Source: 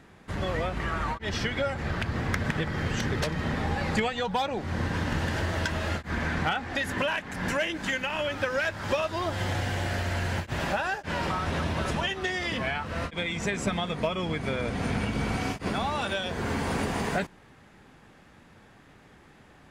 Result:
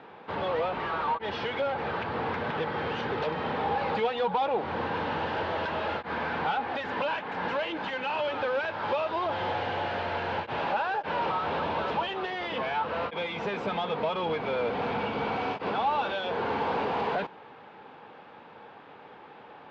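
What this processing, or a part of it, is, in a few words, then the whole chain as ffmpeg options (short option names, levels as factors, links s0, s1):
overdrive pedal into a guitar cabinet: -filter_complex "[0:a]asplit=2[s0][s1];[s1]highpass=f=720:p=1,volume=14.1,asoftclip=type=tanh:threshold=0.178[s2];[s0][s2]amix=inputs=2:normalize=0,lowpass=f=2600:p=1,volume=0.501,highpass=83,equalizer=f=470:t=q:w=4:g=8,equalizer=f=870:t=q:w=4:g=8,equalizer=f=1900:t=q:w=4:g=-7,lowpass=f=3900:w=0.5412,lowpass=f=3900:w=1.3066,volume=0.376"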